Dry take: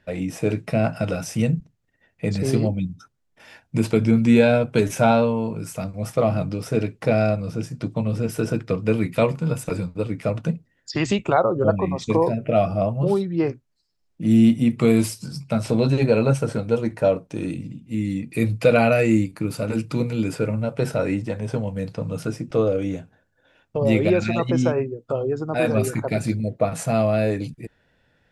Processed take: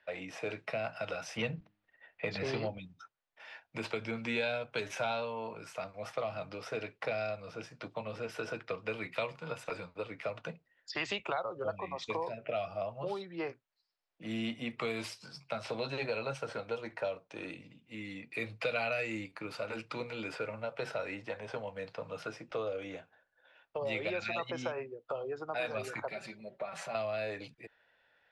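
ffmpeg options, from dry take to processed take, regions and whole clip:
-filter_complex "[0:a]asettb=1/sr,asplit=3[a][b][c];[a]atrim=end=1.374[d];[b]atrim=start=1.37:end=2.78,asetpts=PTS-STARTPTS,afade=t=in:d=0.004:c=qsin,afade=t=out:st=1.406:d=0.004:c=qsin,lowpass=4k,bandreject=f=103.2:t=h:w=4,bandreject=f=206.4:t=h:w=4,bandreject=f=309.6:t=h:w=4,acontrast=72[e];[c]atrim=start=2.776[f];[d][e]acrossfade=d=0.004:c1=hsin:c2=qsin[g];[g][f]acrossfade=d=0.004:c1=qsin:c2=hsin,asettb=1/sr,asplit=3[h][i][j];[h]atrim=end=26.114[k];[i]atrim=start=26.11:end=26.95,asetpts=PTS-STARTPTS,afade=t=in:d=0.004:c=qsin,afade=t=out:st=0.836:d=0.004:c=qsin,acompressor=threshold=-30dB:ratio=2.5:attack=3.2:release=140:knee=1:detection=peak,aecho=1:1:5.2:0.73,atrim=end_sample=37044[l];[j]atrim=start=26.946[m];[k][l]acrossfade=d=0.004:c1=hsin:c2=qsin[n];[n][m]acrossfade=d=0.004:c1=qsin:c2=hsin,acrossover=split=530 4600:gain=0.0794 1 0.0794[o][p][q];[o][p][q]amix=inputs=3:normalize=0,acrossover=split=170|3000[r][s][t];[s]acompressor=threshold=-32dB:ratio=4[u];[r][u][t]amix=inputs=3:normalize=0,volume=-2.5dB"

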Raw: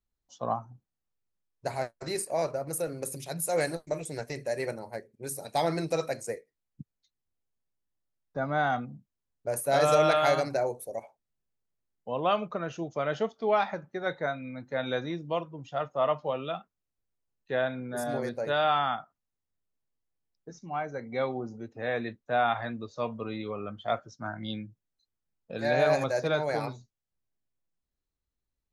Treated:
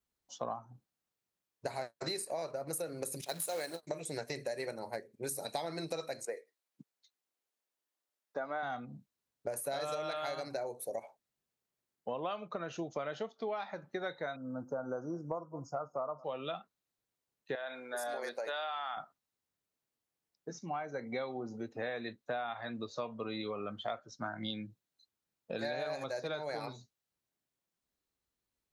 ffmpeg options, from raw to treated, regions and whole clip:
-filter_complex "[0:a]asettb=1/sr,asplit=3[a][b][c];[a]atrim=end=3.214[d];[b]atrim=start=3.21:end=3.83,asetpts=PTS-STARTPTS,afade=t=in:d=0.004:c=qsin,afade=t=out:st=0.616:d=0.004:c=qsin,highpass=210,agate=range=-10dB:threshold=-43dB:ratio=16:release=100:detection=peak,acrusher=bits=3:mode=log:mix=0:aa=0.000001[e];[c]atrim=start=3.826[f];[d][e]acrossfade=d=0.004:c1=hsin:c2=qsin[g];[g][f]acrossfade=d=0.004:c1=qsin:c2=hsin,asettb=1/sr,asplit=3[h][i][j];[h]atrim=end=6.254[k];[i]atrim=start=6.25:end=8.63,asetpts=PTS-STARTPTS,afade=t=in:d=0.004:c=qsin,afade=t=out:st=2.376:d=0.004:c=qsin,highpass=370,acrossover=split=2800[l][m];[m]acompressor=threshold=-58dB:ratio=4:attack=1:release=60[n];[l][n]amix=inputs=2:normalize=0[o];[j]atrim=start=8.626[p];[k][o]acrossfade=d=0.004:c1=hsin:c2=qsin[q];[q][p]acrossfade=d=0.004:c1=qsin:c2=hsin,asettb=1/sr,asplit=3[r][s][t];[r]atrim=end=14.364[u];[s]atrim=start=14.36:end=16.24,asetpts=PTS-STARTPTS,afade=t=in:d=0.004:c=qsin,afade=t=out:st=1.876:d=0.004:c=qsin,asuperstop=centerf=2700:order=20:qfactor=0.79,aecho=1:1:207:0.0668,atrim=end_sample=82908[v];[t]atrim=start=16.236[w];[u][v]acrossfade=d=0.004:c1=hsin:c2=qsin[x];[x][w]acrossfade=d=0.004:c1=qsin:c2=hsin,asettb=1/sr,asplit=3[y][z][aa];[y]atrim=end=17.554[ab];[z]atrim=start=17.55:end=18.97,asetpts=PTS-STARTPTS,afade=t=in:d=0.004:c=qsin,afade=t=out:st=1.416:d=0.004:c=qsin,highpass=610,acompressor=threshold=-34dB:ratio=2.5:attack=3.2:release=140:knee=1:detection=peak[ac];[aa]atrim=start=18.966[ad];[ab][ac]acrossfade=d=0.004:c1=hsin:c2=qsin[ae];[ae][ad]acrossfade=d=0.004:c1=qsin:c2=hsin,highpass=f=210:p=1,adynamicequalizer=threshold=0.00112:dfrequency=4000:dqfactor=6.7:tfrequency=4000:tqfactor=6.7:attack=5:release=100:ratio=0.375:range=4:mode=boostabove:tftype=bell,acompressor=threshold=-38dB:ratio=12,volume=3.5dB"

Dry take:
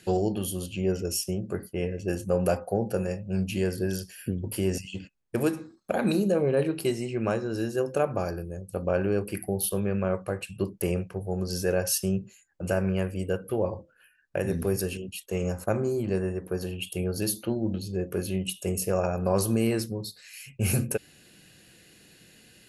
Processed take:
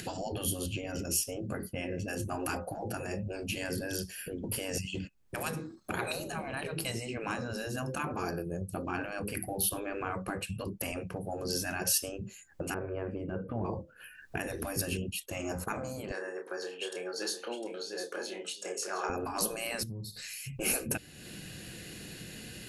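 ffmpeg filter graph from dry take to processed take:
-filter_complex "[0:a]asettb=1/sr,asplit=3[a][b][c];[a]atrim=end=12.744[d];[b]atrim=start=12.74:end=13.65,asetpts=PTS-STARTPTS,afade=t=in:d=0.004:c=qsin,afade=t=out:st=0.906:d=0.004:c=qsin,lowpass=1.4k,acompressor=threshold=-27dB:ratio=4:attack=3.2:release=140:knee=1:detection=peak[e];[c]atrim=start=13.646[f];[d][e]acrossfade=d=0.004:c1=hsin:c2=qsin[g];[g][f]acrossfade=d=0.004:c1=qsin:c2=hsin,asettb=1/sr,asplit=3[h][i][j];[h]atrim=end=16.114[k];[i]atrim=start=16.11:end=19.1,asetpts=PTS-STARTPTS,afade=t=in:d=0.004:c=qsin,afade=t=out:st=2.986:d=0.004:c=qsin,highpass=f=460:w=0.5412,highpass=f=460:w=1.3066,equalizer=f=640:t=q:w=4:g=-7,equalizer=f=1.6k:t=q:w=4:g=4,equalizer=f=2.7k:t=q:w=4:g=-9,lowpass=f=7.6k:w=0.5412,lowpass=f=7.6k:w=1.3066,asplit=2[l][m];[m]adelay=29,volume=-6.5dB[n];[l][n]amix=inputs=2:normalize=0,atrim=end_sample=131859,aecho=1:1:705:0.376,atrim=end_sample=131859[o];[j]atrim=start=19.096[p];[k][o]acrossfade=d=0.004:c1=hsin:c2=qsin[q];[q][p]acrossfade=d=0.004:c1=qsin:c2=hsin,asettb=1/sr,asplit=3[r][s][t];[r]atrim=end=19.834[u];[s]atrim=start=19.83:end=20.6,asetpts=PTS-STARTPTS,afade=t=in:d=0.004:c=qsin,afade=t=out:st=0.766:d=0.004:c=qsin,bass=f=250:g=8,treble=f=4k:g=5,acompressor=threshold=-43dB:ratio=6:attack=3.2:release=140:knee=1:detection=peak[v];[t]atrim=start=20.596[w];[u][v]acrossfade=d=0.004:c1=hsin:c2=qsin[x];[x][w]acrossfade=d=0.004:c1=qsin:c2=hsin,afftfilt=real='re*lt(hypot(re,im),0.126)':imag='im*lt(hypot(re,im),0.126)':win_size=1024:overlap=0.75,lowshelf=f=250:g=5.5,acompressor=mode=upward:threshold=-37dB:ratio=2.5,volume=1dB"

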